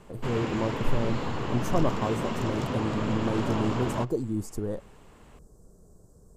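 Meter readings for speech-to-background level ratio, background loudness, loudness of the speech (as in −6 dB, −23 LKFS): 1.0 dB, −32.0 LKFS, −31.0 LKFS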